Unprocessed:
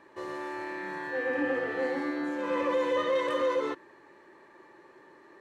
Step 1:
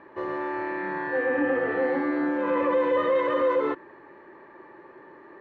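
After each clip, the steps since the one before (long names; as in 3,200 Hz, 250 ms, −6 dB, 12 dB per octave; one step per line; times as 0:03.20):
low-pass filter 2,000 Hz 12 dB per octave
in parallel at +2 dB: brickwall limiter −25.5 dBFS, peak gain reduction 7 dB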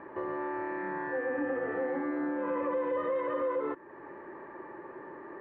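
downward compressor 2 to 1, threshold −42 dBFS, peak gain reduction 12 dB
low-pass filter 1,900 Hz 12 dB per octave
level +3.5 dB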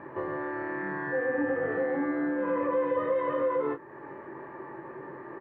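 parametric band 130 Hz +10 dB 0.59 octaves
ambience of single reflections 21 ms −5.5 dB, 39 ms −13 dB
level +1.5 dB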